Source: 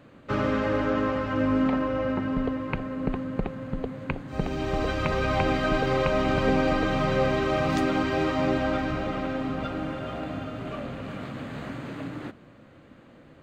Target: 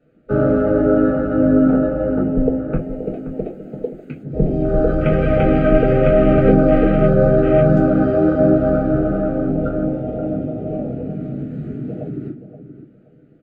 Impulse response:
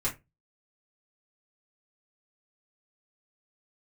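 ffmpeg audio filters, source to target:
-filter_complex "[0:a]asettb=1/sr,asplit=3[a][b][c];[a]atrim=end=2.794[d];[b]atrim=start=2.79:end=4.23,asetpts=PTS-STARTPTS,afade=t=in:d=0.004:c=qsin,afade=t=out:st=1.436:d=0.004:c=qsin,aemphasis=mode=production:type=riaa[e];[c]atrim=start=4.226[f];[d][e]acrossfade=d=0.004:c1=hsin:c2=qsin[g];[g][f]acrossfade=d=0.004:c1=qsin:c2=hsin,afwtdn=0.0355,asuperstop=centerf=1000:order=4:qfactor=2.3,equalizer=f=460:t=o:w=2.8:g=10.5,asplit=2[h][i];[i]adelay=525,lowpass=f=1.4k:p=1,volume=-11dB,asplit=2[j][k];[k]adelay=525,lowpass=f=1.4k:p=1,volume=0.25,asplit=2[l][m];[m]adelay=525,lowpass=f=1.4k:p=1,volume=0.25[n];[h][j][l][n]amix=inputs=4:normalize=0[o];[1:a]atrim=start_sample=2205,asetrate=52920,aresample=44100[p];[o][p]afir=irnorm=-1:irlink=0,volume=-3.5dB"

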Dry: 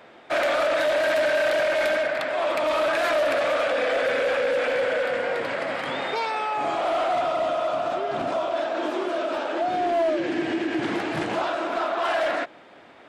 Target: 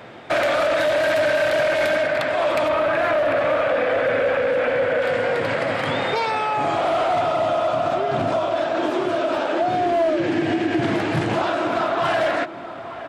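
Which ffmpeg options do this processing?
-filter_complex "[0:a]asettb=1/sr,asplit=3[a][b][c];[a]atrim=end=2.684[d];[b]atrim=start=2.68:end=5.02,asetpts=PTS-STARTPTS,afade=t=in:d=0.004:c=qsin,afade=t=out:st=2.336:d=0.004:c=qsin,acrossover=split=2800[e][f];[f]acompressor=threshold=-50dB:ratio=4:attack=1:release=60[g];[e][g]amix=inputs=2:normalize=0[h];[c]atrim=start=5.016[i];[d][h]acrossfade=d=0.004:c1=hsin:c2=qsin[j];[j][i]acrossfade=d=0.004:c1=qsin:c2=hsin,equalizer=f=110:t=o:w=1.3:g=12.5,acompressor=threshold=-29dB:ratio=2,asplit=2[k][l];[l]adelay=874.6,volume=-12dB,highshelf=f=4k:g=-19.7[m];[k][m]amix=inputs=2:normalize=0,volume=7.5dB"

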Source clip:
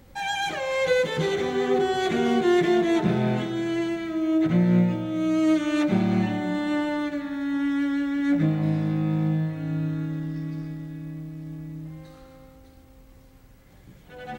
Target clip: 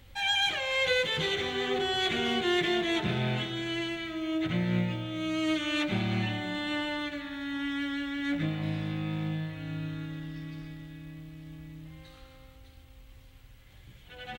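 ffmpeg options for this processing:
-af "firequalizer=gain_entry='entry(110,0);entry(160,-10);entry(3100,7);entry(5100,-3)':delay=0.05:min_phase=1"

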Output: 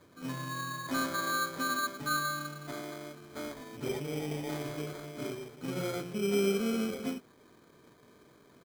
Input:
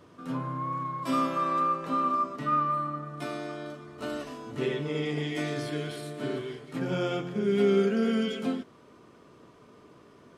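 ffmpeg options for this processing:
-af "atempo=1.2,acrusher=samples=16:mix=1:aa=0.000001,volume=-5dB"

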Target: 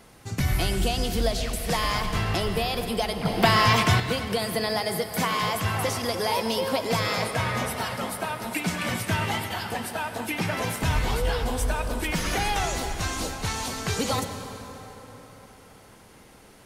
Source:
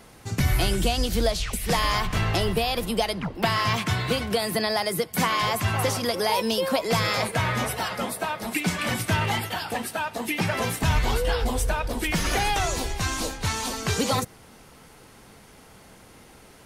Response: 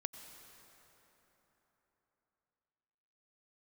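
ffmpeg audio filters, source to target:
-filter_complex "[1:a]atrim=start_sample=2205[a];[0:a][a]afir=irnorm=-1:irlink=0,asettb=1/sr,asplit=3[b][c][d];[b]atrim=end=3.254[e];[c]atrim=start=3.25:end=4,asetpts=PTS-STARTPTS,afade=t=in:d=0.004:c=qsin,afade=t=out:st=0.746:d=0.004:c=qsin,acontrast=73[f];[d]atrim=start=3.996[g];[e][f]acrossfade=d=0.004:c1=hsin:c2=qsin[h];[h][g]acrossfade=d=0.004:c1=qsin:c2=hsin"

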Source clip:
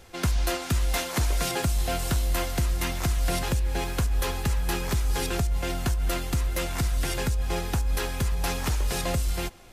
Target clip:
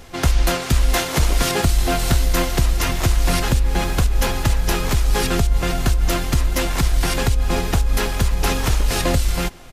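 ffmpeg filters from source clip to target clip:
-filter_complex "[0:a]acontrast=66,asplit=2[a][b];[b]asetrate=22050,aresample=44100,atempo=2,volume=-2dB[c];[a][c]amix=inputs=2:normalize=0"

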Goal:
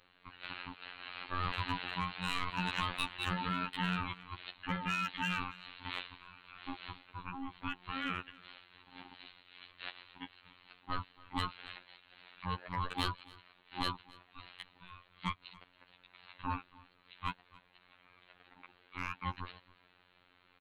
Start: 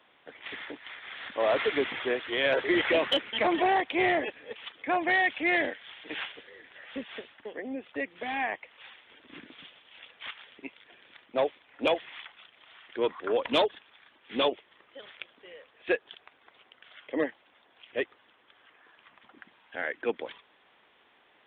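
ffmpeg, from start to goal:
-filter_complex "[0:a]acrossover=split=160|3000[a][b][c];[b]acompressor=threshold=-29dB:ratio=4[d];[a][d][c]amix=inputs=3:normalize=0,acrossover=split=940[e][f];[f]asoftclip=type=hard:threshold=-27.5dB[g];[e][g]amix=inputs=2:normalize=0,aeval=exprs='val(0)*sin(2*PI*540*n/s)':c=same,asplit=2[h][i];[i]aecho=0:1:291:0.075[j];[h][j]amix=inputs=2:normalize=0,afftfilt=real='hypot(re,im)*cos(PI*b)':imag='0':win_size=2048:overlap=0.75,asetrate=45938,aresample=44100,volume=1.5dB"

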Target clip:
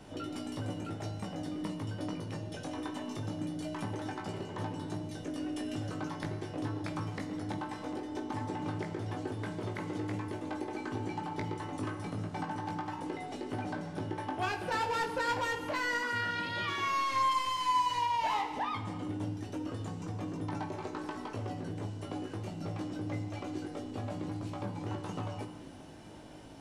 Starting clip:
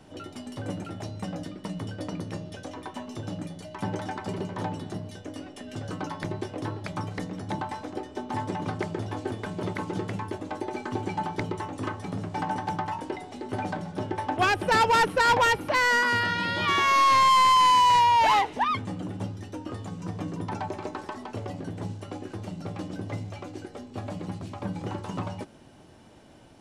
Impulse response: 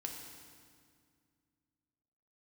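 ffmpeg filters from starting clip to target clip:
-filter_complex "[0:a]acompressor=threshold=-40dB:ratio=2.5,asplit=2[a][b];[1:a]atrim=start_sample=2205,afade=t=out:st=0.42:d=0.01,atrim=end_sample=18963,adelay=19[c];[b][c]afir=irnorm=-1:irlink=0,volume=-1dB[d];[a][d]amix=inputs=2:normalize=0"

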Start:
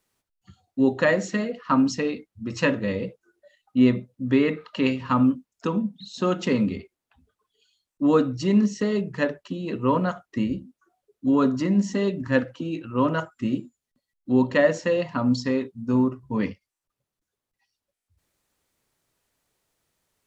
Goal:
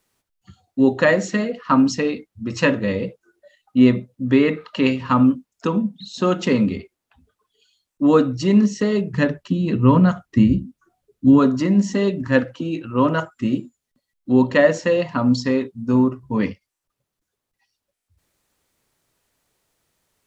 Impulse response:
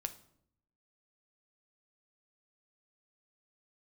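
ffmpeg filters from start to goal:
-filter_complex "[0:a]asplit=3[a][b][c];[a]afade=t=out:st=9.12:d=0.02[d];[b]asubboost=boost=3.5:cutoff=240,afade=t=in:st=9.12:d=0.02,afade=t=out:st=11.38:d=0.02[e];[c]afade=t=in:st=11.38:d=0.02[f];[d][e][f]amix=inputs=3:normalize=0,volume=4.5dB"

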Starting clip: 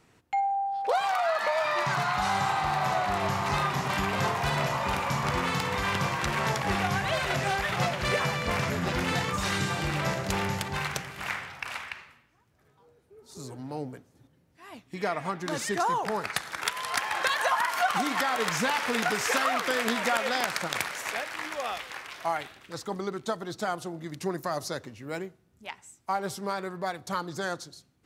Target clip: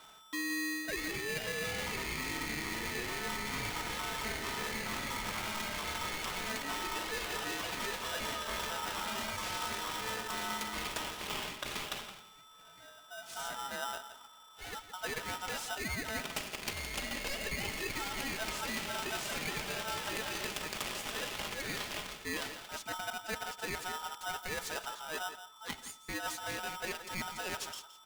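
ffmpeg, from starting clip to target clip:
-filter_complex "[0:a]aecho=1:1:4.7:0.55,areverse,acompressor=threshold=-38dB:ratio=6,areverse,asplit=2[a][b];[b]adelay=169.1,volume=-12dB,highshelf=f=4k:g=-3.8[c];[a][c]amix=inputs=2:normalize=0,asplit=2[d][e];[e]aeval=exprs='clip(val(0),-1,0.00422)':c=same,volume=-9dB[f];[d][f]amix=inputs=2:normalize=0,aeval=exprs='val(0)+0.00158*sin(2*PI*2400*n/s)':c=same,aeval=exprs='val(0)*sgn(sin(2*PI*1100*n/s))':c=same"

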